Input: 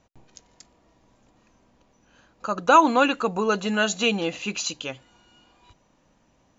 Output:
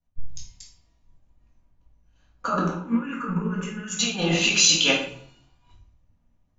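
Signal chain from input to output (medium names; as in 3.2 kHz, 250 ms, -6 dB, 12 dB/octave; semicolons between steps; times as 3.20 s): peaking EQ 460 Hz -2.5 dB 0.77 oct; compressor with a negative ratio -31 dBFS, ratio -1; 2.75–3.99 s: static phaser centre 1.7 kHz, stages 4; simulated room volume 270 m³, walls mixed, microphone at 1.8 m; three bands expanded up and down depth 100%; trim -3 dB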